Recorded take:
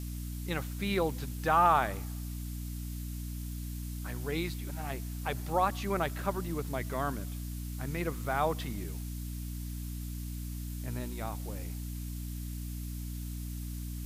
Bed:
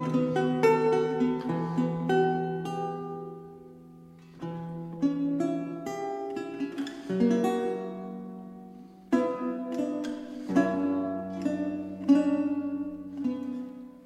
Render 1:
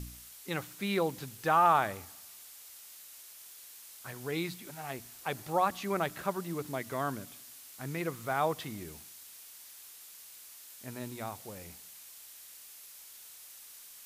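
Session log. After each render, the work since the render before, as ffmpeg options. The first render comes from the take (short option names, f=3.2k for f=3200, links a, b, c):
-af "bandreject=f=60:t=h:w=4,bandreject=f=120:t=h:w=4,bandreject=f=180:t=h:w=4,bandreject=f=240:t=h:w=4,bandreject=f=300:t=h:w=4"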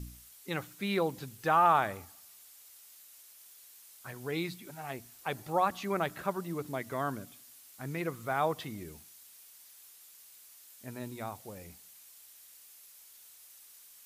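-af "afftdn=nr=6:nf=-52"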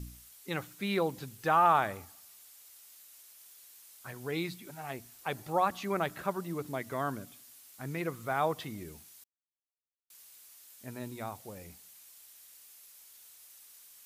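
-filter_complex "[0:a]asplit=3[a][b][c];[a]atrim=end=9.24,asetpts=PTS-STARTPTS,afade=t=out:st=9.236:d=0.004:c=hsin[d];[b]atrim=start=9.24:end=10.1,asetpts=PTS-STARTPTS,volume=0[e];[c]atrim=start=10.1,asetpts=PTS-STARTPTS,afade=t=in:d=0.004:c=hsin[f];[d][e][f]concat=n=3:v=0:a=1"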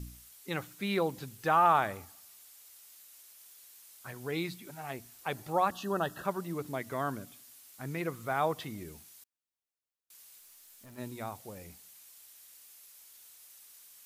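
-filter_complex "[0:a]asettb=1/sr,asplit=3[a][b][c];[a]atrim=end=5.714[d];[b]atrim=start=5.71:end=6.25,asetpts=PTS-STARTPTS,afade=t=in:d=0.004:c=qsin,afade=t=out:st=0.536:d=0.004:c=qsin,asuperstop=centerf=2200:order=20:qfactor=3.4[e];[c]atrim=start=6.246[f];[d][e]acrossfade=d=0.004:c1=hsin:c2=qsin[g];[g][f]acrossfade=d=0.004:c1=qsin:c2=hsin,asplit=3[h][i][j];[h]afade=t=out:st=10.38:d=0.02[k];[i]aeval=exprs='(tanh(282*val(0)+0.15)-tanh(0.15))/282':c=same,afade=t=in:st=10.38:d=0.02,afade=t=out:st=10.97:d=0.02[l];[j]afade=t=in:st=10.97:d=0.02[m];[k][l][m]amix=inputs=3:normalize=0"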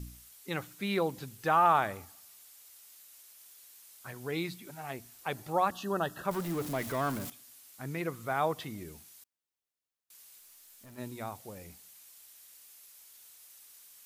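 -filter_complex "[0:a]asettb=1/sr,asplit=3[a][b][c];[a]atrim=end=6.314[d];[b]atrim=start=6.31:end=7.3,asetpts=PTS-STARTPTS,afade=t=in:d=0.004:c=qsin,afade=t=out:st=0.986:d=0.004:c=qsin,aeval=exprs='val(0)+0.5*0.015*sgn(val(0))':c=same[e];[c]atrim=start=7.296[f];[d][e]acrossfade=d=0.004:c1=hsin:c2=qsin[g];[g][f]acrossfade=d=0.004:c1=qsin:c2=hsin"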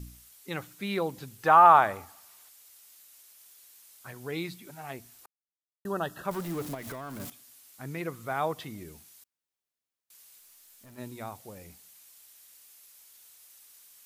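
-filter_complex "[0:a]asettb=1/sr,asplit=3[a][b][c];[a]atrim=end=1.434[d];[b]atrim=start=1.43:end=2.49,asetpts=PTS-STARTPTS,afade=t=in:d=0.004:c=qsin,afade=t=out:st=1.056:d=0.004:c=qsin,equalizer=f=970:w=0.69:g=8.5[e];[c]atrim=start=2.486[f];[d][e]acrossfade=d=0.004:c1=hsin:c2=qsin[g];[g][f]acrossfade=d=0.004:c1=qsin:c2=hsin,asettb=1/sr,asplit=3[h][i][j];[h]atrim=end=6.744[k];[i]atrim=start=6.74:end=7.2,asetpts=PTS-STARTPTS,afade=t=in:d=0.004:c=qsin,afade=t=out:st=0.456:d=0.004:c=qsin,acompressor=threshold=-36dB:ratio=6:attack=3.2:release=140:knee=1:detection=peak[l];[j]atrim=start=7.196[m];[k][l]acrossfade=d=0.004:c1=hsin:c2=qsin[n];[n][m]acrossfade=d=0.004:c1=qsin:c2=hsin,asplit=3[o][p][q];[o]atrim=end=5.26,asetpts=PTS-STARTPTS,afade=t=out:st=5.256:d=0.004:c=hsin[r];[p]atrim=start=5.26:end=5.85,asetpts=PTS-STARTPTS,volume=0[s];[q]atrim=start=5.85,asetpts=PTS-STARTPTS,afade=t=in:d=0.004:c=hsin[t];[r][s][t]concat=n=3:v=0:a=1"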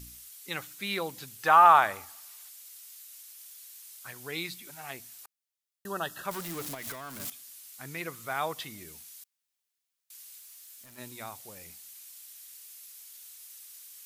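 -af "tiltshelf=f=1.2k:g=-6.5"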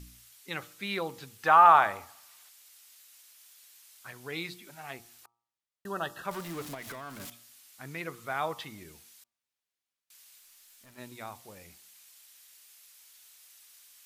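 -af "aemphasis=mode=reproduction:type=cd,bandreject=f=117.6:t=h:w=4,bandreject=f=235.2:t=h:w=4,bandreject=f=352.8:t=h:w=4,bandreject=f=470.4:t=h:w=4,bandreject=f=588:t=h:w=4,bandreject=f=705.6:t=h:w=4,bandreject=f=823.2:t=h:w=4,bandreject=f=940.8:t=h:w=4,bandreject=f=1.0584k:t=h:w=4,bandreject=f=1.176k:t=h:w=4,bandreject=f=1.2936k:t=h:w=4"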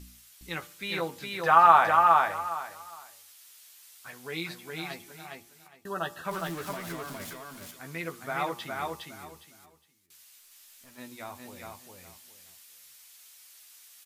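-filter_complex "[0:a]asplit=2[a][b];[b]adelay=12,volume=-6dB[c];[a][c]amix=inputs=2:normalize=0,asplit=2[d][e];[e]aecho=0:1:411|822|1233:0.708|0.156|0.0343[f];[d][f]amix=inputs=2:normalize=0"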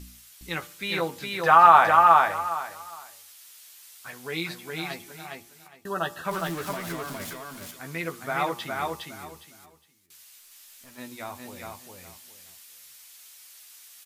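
-af "volume=4dB,alimiter=limit=-3dB:level=0:latency=1"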